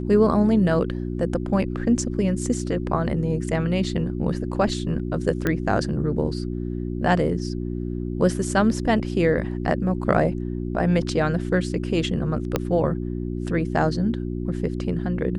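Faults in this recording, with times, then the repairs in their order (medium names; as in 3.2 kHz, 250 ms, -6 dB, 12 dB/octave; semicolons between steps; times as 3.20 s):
hum 60 Hz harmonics 6 -28 dBFS
5.47 s: pop -10 dBFS
12.56 s: pop -7 dBFS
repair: de-click; de-hum 60 Hz, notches 6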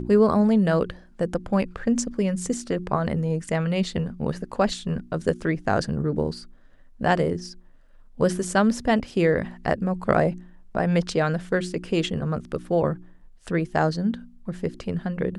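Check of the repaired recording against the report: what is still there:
12.56 s: pop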